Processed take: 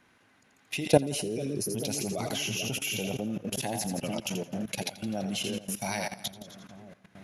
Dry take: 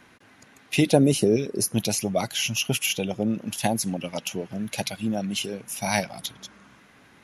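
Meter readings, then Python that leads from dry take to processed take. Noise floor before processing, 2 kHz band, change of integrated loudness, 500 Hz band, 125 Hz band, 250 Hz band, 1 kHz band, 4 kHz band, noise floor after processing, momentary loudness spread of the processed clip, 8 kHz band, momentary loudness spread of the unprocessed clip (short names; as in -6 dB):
-55 dBFS, -6.0 dB, -6.0 dB, -5.0 dB, -6.5 dB, -7.5 dB, -5.5 dB, -5.0 dB, -64 dBFS, 12 LU, -5.5 dB, 12 LU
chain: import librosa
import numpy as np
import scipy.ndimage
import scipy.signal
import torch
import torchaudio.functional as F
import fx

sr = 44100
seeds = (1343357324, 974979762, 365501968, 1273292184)

y = fx.echo_split(x, sr, split_hz=600.0, low_ms=441, high_ms=84, feedback_pct=52, wet_db=-7)
y = fx.level_steps(y, sr, step_db=16)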